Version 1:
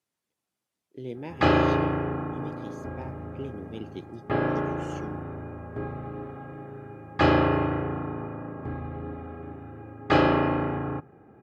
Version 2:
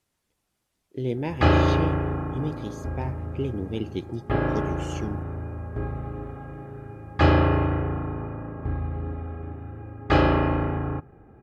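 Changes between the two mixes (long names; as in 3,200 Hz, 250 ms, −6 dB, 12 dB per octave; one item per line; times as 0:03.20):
speech +8.0 dB
master: remove high-pass filter 140 Hz 12 dB per octave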